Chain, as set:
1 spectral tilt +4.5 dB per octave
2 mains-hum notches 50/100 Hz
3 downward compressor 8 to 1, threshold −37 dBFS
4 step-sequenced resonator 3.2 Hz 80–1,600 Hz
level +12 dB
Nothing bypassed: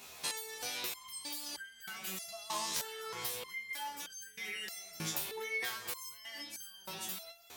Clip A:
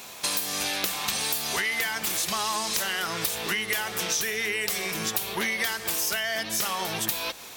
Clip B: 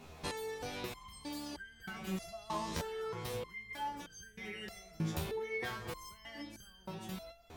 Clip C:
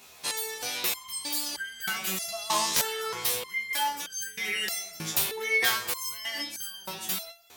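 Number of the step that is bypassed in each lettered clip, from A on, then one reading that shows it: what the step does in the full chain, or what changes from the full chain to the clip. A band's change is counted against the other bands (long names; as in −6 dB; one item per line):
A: 4, 250 Hz band +2.0 dB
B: 1, 8 kHz band −14.5 dB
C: 3, average gain reduction 9.5 dB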